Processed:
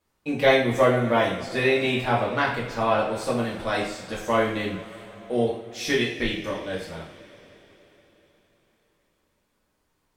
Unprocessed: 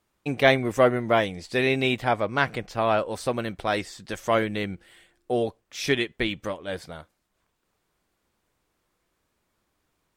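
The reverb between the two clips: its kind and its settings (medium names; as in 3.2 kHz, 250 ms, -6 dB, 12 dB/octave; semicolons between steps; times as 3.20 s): two-slope reverb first 0.53 s, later 4.3 s, from -20 dB, DRR -6 dB; trim -6 dB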